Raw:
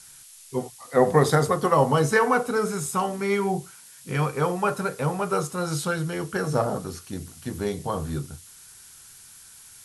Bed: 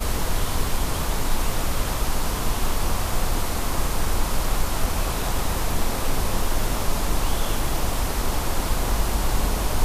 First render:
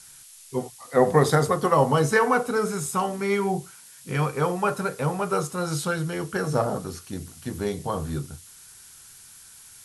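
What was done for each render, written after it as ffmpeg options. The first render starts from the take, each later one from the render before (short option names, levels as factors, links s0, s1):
-af anull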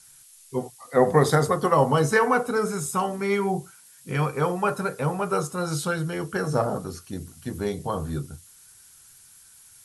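-af "afftdn=nr=6:nf=-48"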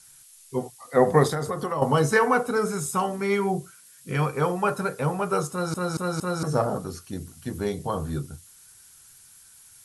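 -filter_complex "[0:a]asettb=1/sr,asplit=3[s0][s1][s2];[s0]atrim=end=1.274[s3];[s1]atrim=start=1.27:end=1.82,asetpts=PTS-STARTPTS,afade=t=in:d=0.004:c=qsin,afade=t=out:st=0.546:d=0.004:c=qsin,acompressor=threshold=0.0501:ratio=3:attack=3.2:release=140:knee=1:detection=peak[s4];[s2]atrim=start=1.816[s5];[s3][s4]acrossfade=d=0.004:c1=hsin:c2=qsin[s6];[s6][s5]acrossfade=d=0.004:c1=qsin:c2=hsin,asettb=1/sr,asplit=3[s7][s8][s9];[s7]atrim=end=3.534[s10];[s8]atrim=start=3.53:end=4.14,asetpts=PTS-STARTPTS,afade=t=in:d=0.004:c=qsin,afade=t=out:st=0.606:d=0.004:c=qsin,asuperstop=centerf=850:order=4:qfactor=3.6[s11];[s9]atrim=start=4.136[s12];[s10][s11]acrossfade=d=0.004:c1=hsin:c2=qsin[s13];[s13][s12]acrossfade=d=0.004:c1=qsin:c2=hsin,asplit=5[s14][s15][s16][s17][s18];[s14]atrim=end=5.742[s19];[s15]atrim=start=5.508:end=5.742[s20];[s16]atrim=start=5.508:end=5.742[s21];[s17]atrim=start=5.508:end=5.742[s22];[s18]atrim=start=6.428[s23];[s19][s20]acrossfade=d=0.004:c1=hsin:c2=hsin[s24];[s24][s21]acrossfade=d=0.004:c1=hsin:c2=hsin[s25];[s25][s22]acrossfade=d=0.004:c1=hsin:c2=hsin[s26];[s26][s23]acrossfade=d=0.004:c1=hsin:c2=hsin"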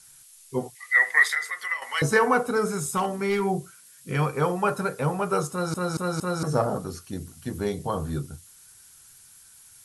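-filter_complex "[0:a]asettb=1/sr,asplit=3[s0][s1][s2];[s0]atrim=end=0.754[s3];[s1]atrim=start=0.75:end=2.02,asetpts=PTS-STARTPTS,afade=t=in:d=0.004:c=qsin,afade=t=out:st=1.266:d=0.004:c=qsin,highpass=f=2000:t=q:w=15[s4];[s2]atrim=start=2.016[s5];[s3][s4]acrossfade=d=0.004:c1=hsin:c2=qsin[s6];[s6][s5]acrossfade=d=0.004:c1=qsin:c2=hsin,asettb=1/sr,asplit=3[s7][s8][s9];[s7]atrim=end=2.704[s10];[s8]atrim=start=2.7:end=3.43,asetpts=PTS-STARTPTS,afade=t=in:d=0.004:c=qsin,afade=t=out:st=0.726:d=0.004:c=qsin,asoftclip=type=hard:threshold=0.112[s11];[s9]atrim=start=3.426[s12];[s10][s11]acrossfade=d=0.004:c1=hsin:c2=qsin[s13];[s13][s12]acrossfade=d=0.004:c1=qsin:c2=hsin"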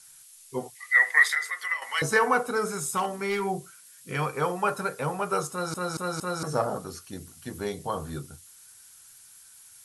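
-af "lowshelf=f=390:g=-8"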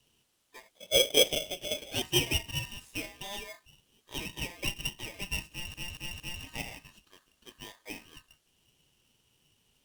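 -af "bandpass=f=1600:t=q:w=3.3:csg=0,aeval=exprs='val(0)*sgn(sin(2*PI*1400*n/s))':c=same"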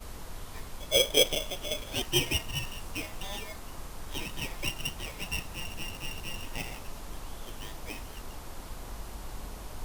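-filter_complex "[1:a]volume=0.119[s0];[0:a][s0]amix=inputs=2:normalize=0"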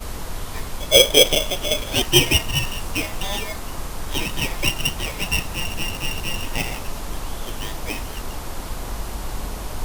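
-af "volume=3.98,alimiter=limit=0.794:level=0:latency=1"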